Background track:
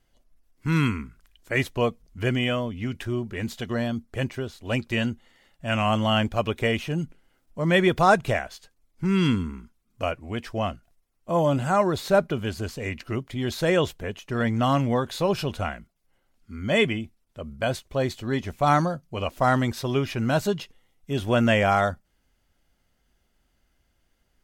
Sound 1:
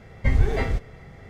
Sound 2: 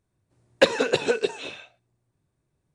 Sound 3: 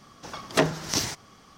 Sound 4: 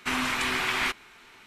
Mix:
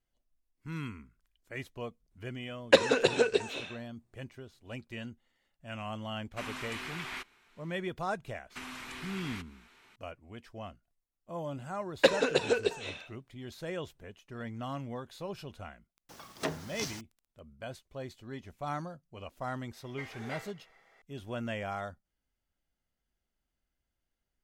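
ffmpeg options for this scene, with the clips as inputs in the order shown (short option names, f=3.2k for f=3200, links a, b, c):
-filter_complex "[2:a]asplit=2[a][b];[4:a]asplit=2[c][d];[0:a]volume=-16.5dB[e];[d]acrossover=split=400|3600[f][g][h];[f]acompressor=threshold=-40dB:ratio=4[i];[g]acompressor=threshold=-36dB:ratio=4[j];[h]acompressor=threshold=-43dB:ratio=4[k];[i][j][k]amix=inputs=3:normalize=0[l];[3:a]acrusher=bits=6:mix=0:aa=0.000001[m];[1:a]highpass=760[n];[a]atrim=end=2.74,asetpts=PTS-STARTPTS,volume=-3dB,afade=t=in:d=0.004:c=hsin,afade=t=out:st=2.736:d=0.004:c=hsin,adelay=2110[o];[c]atrim=end=1.46,asetpts=PTS-STARTPTS,volume=-13.5dB,afade=t=in:d=0.004:c=hsin,afade=t=out:st=1.456:d=0.004:c=hsin,adelay=6310[p];[l]atrim=end=1.46,asetpts=PTS-STARTPTS,volume=-9dB,afade=t=in:d=0.004:c=hsin,afade=t=out:st=1.456:d=0.004:c=hsin,adelay=374850S[q];[b]atrim=end=2.74,asetpts=PTS-STARTPTS,volume=-5dB,afade=t=in:d=0.004:c=hsin,afade=t=out:st=2.736:d=0.004:c=hsin,adelay=11420[r];[m]atrim=end=1.57,asetpts=PTS-STARTPTS,volume=-12.5dB,afade=t=in:d=0.004:c=hsin,afade=t=out:st=1.566:d=0.004:c=hsin,adelay=15860[s];[n]atrim=end=1.29,asetpts=PTS-STARTPTS,volume=-10.5dB,afade=t=in:d=0.004:c=hsin,afade=t=out:st=1.286:d=0.004:c=hsin,adelay=19730[t];[e][o][p][q][r][s][t]amix=inputs=7:normalize=0"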